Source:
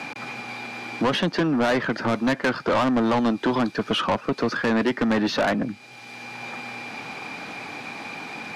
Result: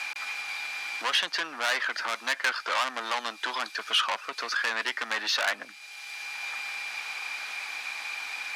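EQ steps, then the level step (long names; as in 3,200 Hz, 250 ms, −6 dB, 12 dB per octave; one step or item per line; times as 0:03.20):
high-pass filter 1,400 Hz 12 dB per octave
high-shelf EQ 7,400 Hz +7.5 dB
+1.5 dB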